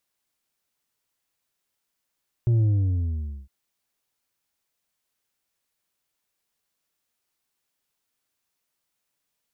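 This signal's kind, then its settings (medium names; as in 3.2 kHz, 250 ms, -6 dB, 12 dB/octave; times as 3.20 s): sub drop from 120 Hz, over 1.01 s, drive 5 dB, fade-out 0.87 s, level -17.5 dB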